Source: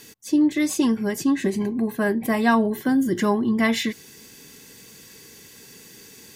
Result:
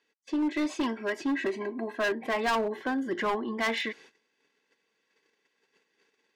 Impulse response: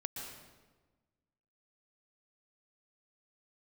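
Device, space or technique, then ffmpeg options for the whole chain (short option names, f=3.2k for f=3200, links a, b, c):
walkie-talkie: -filter_complex "[0:a]asettb=1/sr,asplit=3[a][b][c];[a]atrim=end=0.424[d];[b]atrim=start=0.42:end=2.15,asetpts=PTS-STARTPTS,afade=t=in:d=0.004:c=qsin,afade=t=out:st=1.726:d=0.004:c=qsin,aecho=1:1:3.1:0.55,atrim=end_sample=76293[e];[c]atrim=start=2.146[f];[d][e]acrossfade=d=0.004:c1=hsin:c2=qsin[g];[g][f]acrossfade=d=0.004:c1=qsin:c2=hsin,highpass=490,lowpass=2.6k,asoftclip=type=hard:threshold=-24dB,agate=range=-21dB:threshold=-51dB:ratio=16:detection=peak"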